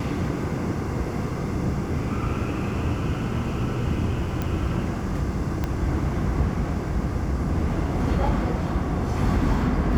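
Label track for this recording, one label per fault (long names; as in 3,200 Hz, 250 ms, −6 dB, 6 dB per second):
4.420000	4.420000	click −14 dBFS
5.640000	5.640000	click −13 dBFS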